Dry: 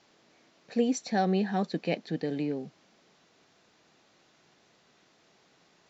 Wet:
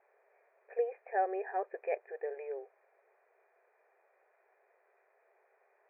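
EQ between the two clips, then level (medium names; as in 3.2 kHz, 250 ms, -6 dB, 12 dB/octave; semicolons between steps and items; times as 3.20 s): brick-wall FIR high-pass 370 Hz; rippled Chebyshev low-pass 2.5 kHz, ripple 6 dB; distance through air 340 m; 0.0 dB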